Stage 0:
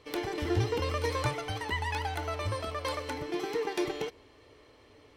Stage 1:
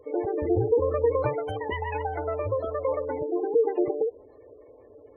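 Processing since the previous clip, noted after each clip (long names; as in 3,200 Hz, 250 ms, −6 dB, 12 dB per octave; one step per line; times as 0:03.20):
graphic EQ with 10 bands 500 Hz +12 dB, 4,000 Hz −7 dB, 8,000 Hz +6 dB
gate on every frequency bin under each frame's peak −20 dB strong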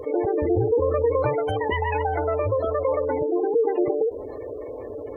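envelope flattener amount 50%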